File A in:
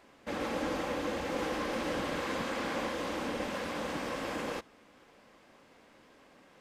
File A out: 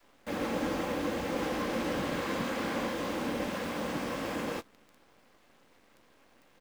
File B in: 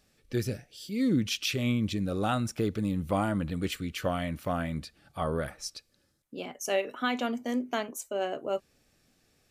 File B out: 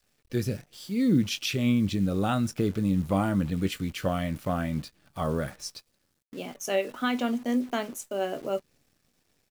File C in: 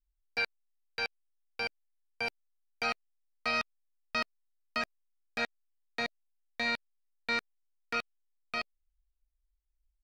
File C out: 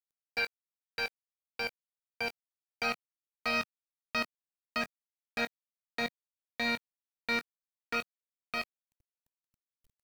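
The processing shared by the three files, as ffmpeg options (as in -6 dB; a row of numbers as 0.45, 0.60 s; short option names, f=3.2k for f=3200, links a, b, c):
-filter_complex "[0:a]asplit=2[a][b];[b]adelay=21,volume=-13.5dB[c];[a][c]amix=inputs=2:normalize=0,acrusher=bits=9:dc=4:mix=0:aa=0.000001,adynamicequalizer=threshold=0.00631:dfrequency=170:dqfactor=0.8:tfrequency=170:tqfactor=0.8:attack=5:release=100:ratio=0.375:range=2.5:mode=boostabove:tftype=bell"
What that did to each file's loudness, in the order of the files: +1.5, +3.0, 0.0 LU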